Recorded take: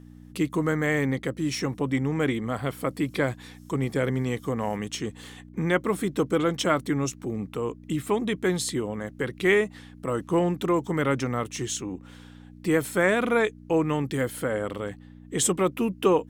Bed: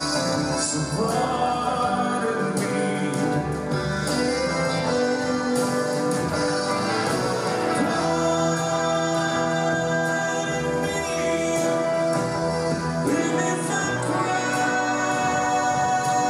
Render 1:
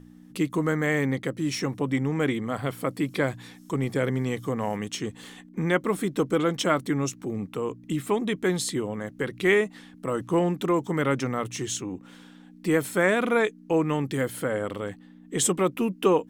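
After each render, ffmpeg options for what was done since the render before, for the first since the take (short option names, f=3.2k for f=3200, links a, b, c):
-af "bandreject=f=60:t=h:w=4,bandreject=f=120:t=h:w=4"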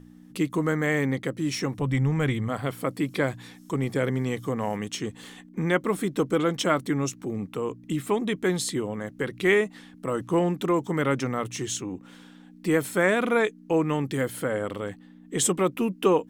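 -filter_complex "[0:a]asplit=3[a][b][c];[a]afade=t=out:st=1.77:d=0.02[d];[b]asubboost=boost=10:cutoff=110,afade=t=in:st=1.77:d=0.02,afade=t=out:st=2.48:d=0.02[e];[c]afade=t=in:st=2.48:d=0.02[f];[d][e][f]amix=inputs=3:normalize=0"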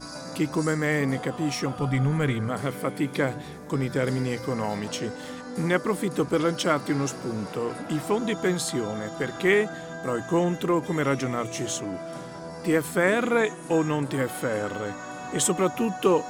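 -filter_complex "[1:a]volume=-14.5dB[a];[0:a][a]amix=inputs=2:normalize=0"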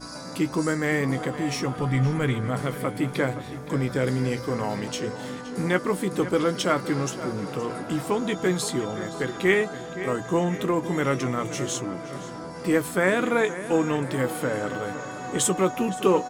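-filter_complex "[0:a]asplit=2[a][b];[b]adelay=16,volume=-11dB[c];[a][c]amix=inputs=2:normalize=0,asplit=2[d][e];[e]adelay=519,lowpass=f=4.1k:p=1,volume=-13dB,asplit=2[f][g];[g]adelay=519,lowpass=f=4.1k:p=1,volume=0.55,asplit=2[h][i];[i]adelay=519,lowpass=f=4.1k:p=1,volume=0.55,asplit=2[j][k];[k]adelay=519,lowpass=f=4.1k:p=1,volume=0.55,asplit=2[l][m];[m]adelay=519,lowpass=f=4.1k:p=1,volume=0.55,asplit=2[n][o];[o]adelay=519,lowpass=f=4.1k:p=1,volume=0.55[p];[d][f][h][j][l][n][p]amix=inputs=7:normalize=0"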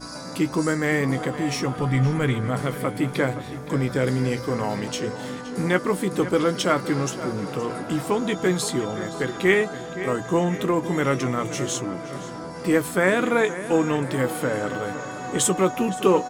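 -af "volume=2dB"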